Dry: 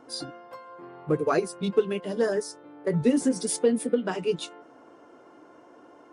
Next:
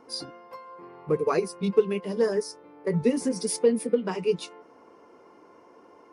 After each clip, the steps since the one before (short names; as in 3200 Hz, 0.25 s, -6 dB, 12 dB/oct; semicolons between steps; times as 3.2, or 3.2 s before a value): ripple EQ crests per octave 0.85, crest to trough 7 dB; gain -1.5 dB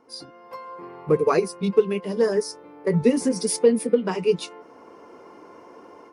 AGC gain up to 12.5 dB; gain -5 dB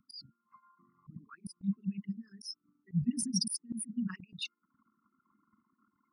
formant sharpening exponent 3; Chebyshev band-stop 220–1400 Hz, order 4; auto swell 0.195 s; gain +2.5 dB